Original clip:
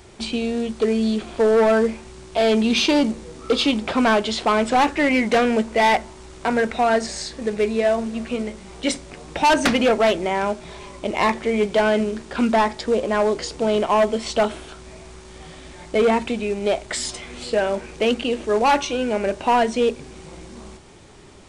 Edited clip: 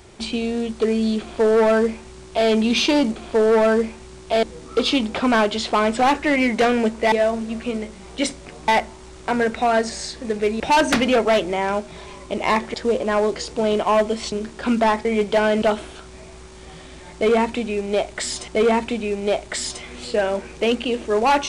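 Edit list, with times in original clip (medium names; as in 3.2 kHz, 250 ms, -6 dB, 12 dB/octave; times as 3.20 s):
1.21–2.48 s: copy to 3.16 s
7.77–9.33 s: move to 5.85 s
11.47–12.04 s: swap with 12.77–14.35 s
15.87–17.21 s: loop, 2 plays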